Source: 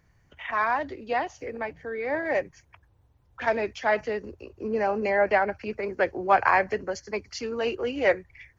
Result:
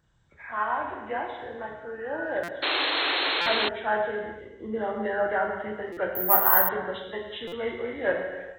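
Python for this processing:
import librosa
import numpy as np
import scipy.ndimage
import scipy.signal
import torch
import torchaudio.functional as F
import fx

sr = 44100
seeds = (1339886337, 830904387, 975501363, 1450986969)

y = fx.freq_compress(x, sr, knee_hz=1200.0, ratio=1.5)
y = fx.high_shelf(y, sr, hz=3600.0, db=10.5)
y = fx.doubler(y, sr, ms=33.0, db=-11.0)
y = fx.rev_gated(y, sr, seeds[0], gate_ms=470, shape='falling', drr_db=1.0)
y = fx.spec_paint(y, sr, seeds[1], shape='noise', start_s=2.62, length_s=1.07, low_hz=270.0, high_hz=4300.0, level_db=-20.0)
y = fx.resample_bad(y, sr, factor=3, down='none', up='zero_stuff', at=(6.15, 6.69))
y = fx.buffer_glitch(y, sr, at_s=(2.43, 3.41, 5.92, 7.47), block=256, repeats=8)
y = y * librosa.db_to_amplitude(-6.0)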